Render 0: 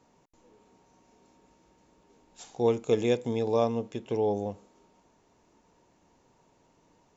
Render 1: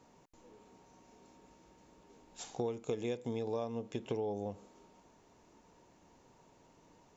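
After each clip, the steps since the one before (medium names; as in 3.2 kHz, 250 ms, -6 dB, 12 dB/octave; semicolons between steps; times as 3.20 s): compression 10:1, threshold -34 dBFS, peak gain reduction 15.5 dB; trim +1 dB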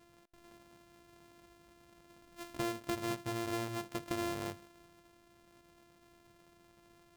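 sorted samples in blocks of 128 samples; in parallel at -8 dB: hard clipper -32.5 dBFS, distortion -12 dB; on the sum: trim -3 dB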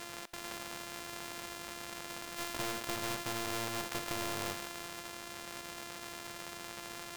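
overdrive pedal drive 24 dB, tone 5.3 kHz, clips at -23 dBFS; spectrum-flattening compressor 2:1; trim +5 dB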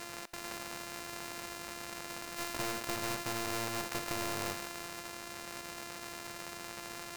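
band-stop 3.3 kHz, Q 8.5; trim +1 dB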